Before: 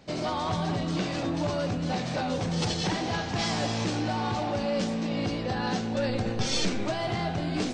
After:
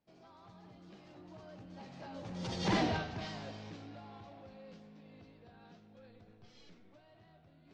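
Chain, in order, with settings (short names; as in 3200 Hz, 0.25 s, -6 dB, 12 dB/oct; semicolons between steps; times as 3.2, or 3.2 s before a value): Doppler pass-by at 2.79, 23 m/s, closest 2 m; air absorption 99 m; gain +1 dB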